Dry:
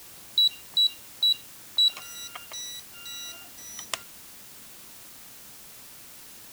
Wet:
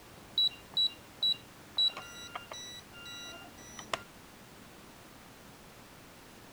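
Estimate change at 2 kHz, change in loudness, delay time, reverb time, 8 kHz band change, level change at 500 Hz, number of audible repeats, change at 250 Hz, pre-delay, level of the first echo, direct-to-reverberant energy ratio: −3.0 dB, −7.0 dB, no echo audible, no reverb audible, −11.5 dB, +3.0 dB, no echo audible, +4.0 dB, no reverb audible, no echo audible, no reverb audible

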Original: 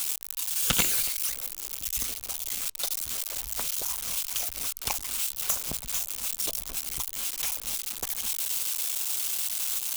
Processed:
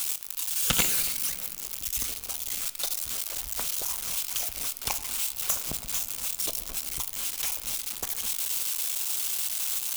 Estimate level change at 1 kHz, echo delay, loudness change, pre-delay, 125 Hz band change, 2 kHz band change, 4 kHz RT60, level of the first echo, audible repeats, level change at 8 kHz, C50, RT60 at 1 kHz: +0.5 dB, no echo audible, 0.0 dB, 6 ms, +0.5 dB, +0.5 dB, 1.4 s, no echo audible, no echo audible, 0.0 dB, 12.5 dB, 2.1 s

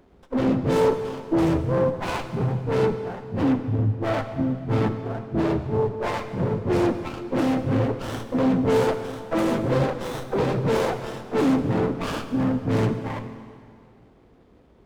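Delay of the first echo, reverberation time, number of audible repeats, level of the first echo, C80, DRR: no echo audible, 2.2 s, no echo audible, no echo audible, 10.0 dB, 8.5 dB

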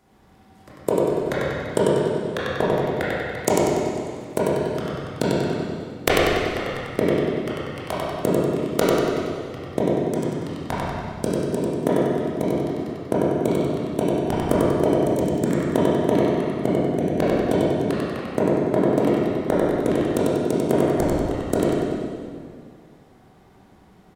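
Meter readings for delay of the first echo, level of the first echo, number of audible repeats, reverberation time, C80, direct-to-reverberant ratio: 95 ms, −1.5 dB, 1, 2.1 s, −3.5 dB, −10.0 dB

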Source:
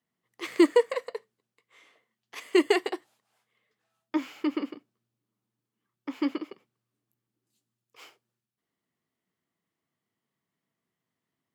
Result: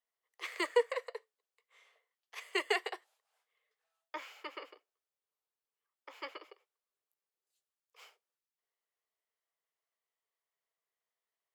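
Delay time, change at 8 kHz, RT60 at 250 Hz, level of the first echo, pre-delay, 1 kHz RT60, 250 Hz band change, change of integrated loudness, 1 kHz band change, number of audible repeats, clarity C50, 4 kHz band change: no echo audible, −6.5 dB, no reverb audible, no echo audible, no reverb audible, no reverb audible, −23.5 dB, −10.0 dB, −5.5 dB, no echo audible, no reverb audible, −5.0 dB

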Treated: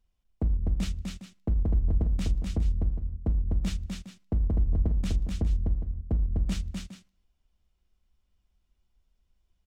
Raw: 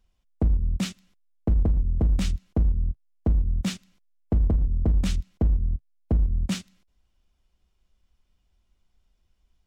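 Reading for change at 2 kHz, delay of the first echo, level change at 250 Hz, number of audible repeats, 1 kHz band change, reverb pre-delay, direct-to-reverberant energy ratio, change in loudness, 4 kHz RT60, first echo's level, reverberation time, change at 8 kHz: −5.0 dB, 251 ms, −4.0 dB, 2, −5.0 dB, no reverb audible, no reverb audible, −3.5 dB, no reverb audible, −3.5 dB, no reverb audible, can't be measured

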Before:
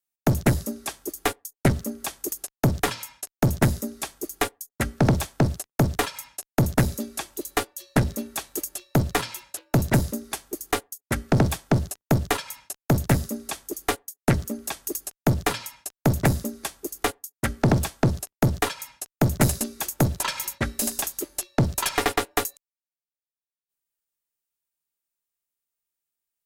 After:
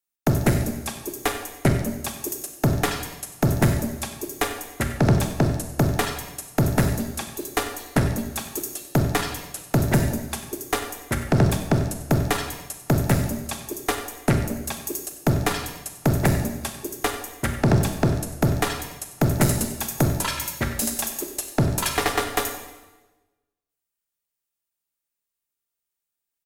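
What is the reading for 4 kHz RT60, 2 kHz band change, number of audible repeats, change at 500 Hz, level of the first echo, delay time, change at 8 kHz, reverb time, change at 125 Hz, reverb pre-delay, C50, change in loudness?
1.0 s, +1.0 dB, 1, +1.5 dB, −15.0 dB, 95 ms, +1.0 dB, 1.2 s, +1.5 dB, 23 ms, 6.5 dB, +1.5 dB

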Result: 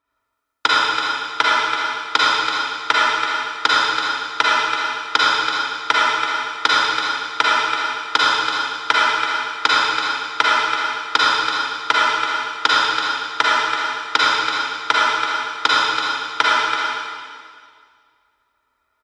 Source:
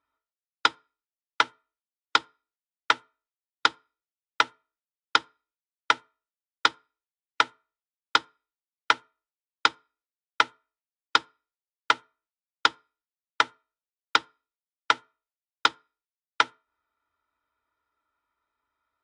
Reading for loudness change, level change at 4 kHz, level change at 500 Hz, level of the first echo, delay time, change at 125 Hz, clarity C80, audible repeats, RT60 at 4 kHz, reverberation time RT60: +9.0 dB, +11.5 dB, +12.5 dB, −7.5 dB, 331 ms, can't be measured, −4.0 dB, 1, 1.9 s, 2.0 s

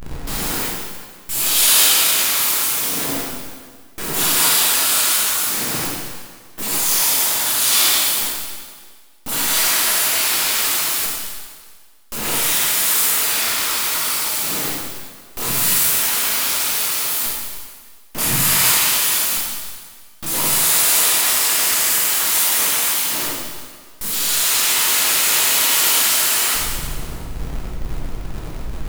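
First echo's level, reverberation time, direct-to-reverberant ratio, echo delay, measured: no echo audible, 1.7 s, −6.0 dB, no echo audible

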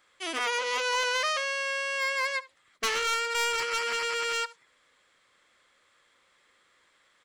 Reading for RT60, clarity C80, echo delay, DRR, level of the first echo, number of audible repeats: no reverb audible, no reverb audible, 72 ms, no reverb audible, −20.0 dB, 1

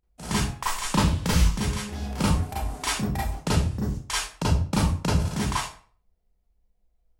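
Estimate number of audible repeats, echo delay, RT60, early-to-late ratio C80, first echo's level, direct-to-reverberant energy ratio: no echo audible, no echo audible, 0.45 s, 7.5 dB, no echo audible, −8.5 dB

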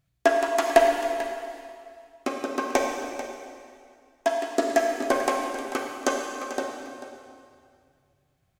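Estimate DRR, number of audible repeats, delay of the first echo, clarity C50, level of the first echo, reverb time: 1.5 dB, 1, 441 ms, 2.5 dB, −12.5 dB, 2.2 s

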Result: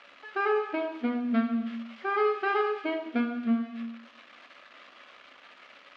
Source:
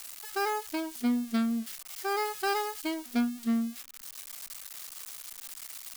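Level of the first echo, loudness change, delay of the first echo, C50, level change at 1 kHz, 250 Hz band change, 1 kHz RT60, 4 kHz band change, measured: no echo audible, +3.5 dB, no echo audible, 8.0 dB, +2.0 dB, +0.5 dB, 1.1 s, −5.5 dB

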